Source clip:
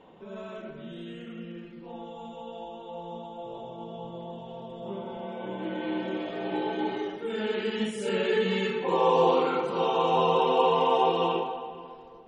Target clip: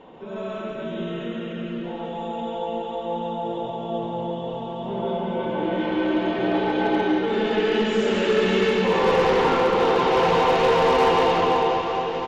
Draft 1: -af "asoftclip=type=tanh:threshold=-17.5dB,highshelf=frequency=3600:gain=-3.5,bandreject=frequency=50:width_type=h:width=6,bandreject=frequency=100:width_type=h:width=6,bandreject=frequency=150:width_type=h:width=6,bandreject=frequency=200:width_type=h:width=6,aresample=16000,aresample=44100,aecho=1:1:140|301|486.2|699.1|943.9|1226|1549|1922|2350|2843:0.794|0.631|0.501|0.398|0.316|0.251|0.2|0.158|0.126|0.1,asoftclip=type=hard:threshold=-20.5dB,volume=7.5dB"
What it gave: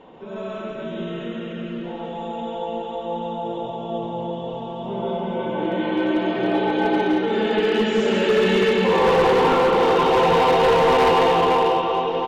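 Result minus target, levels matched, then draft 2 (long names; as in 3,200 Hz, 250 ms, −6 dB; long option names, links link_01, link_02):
soft clipping: distortion −9 dB
-af "asoftclip=type=tanh:threshold=-26.5dB,highshelf=frequency=3600:gain=-3.5,bandreject=frequency=50:width_type=h:width=6,bandreject=frequency=100:width_type=h:width=6,bandreject=frequency=150:width_type=h:width=6,bandreject=frequency=200:width_type=h:width=6,aresample=16000,aresample=44100,aecho=1:1:140|301|486.2|699.1|943.9|1226|1549|1922|2350|2843:0.794|0.631|0.501|0.398|0.316|0.251|0.2|0.158|0.126|0.1,asoftclip=type=hard:threshold=-20.5dB,volume=7.5dB"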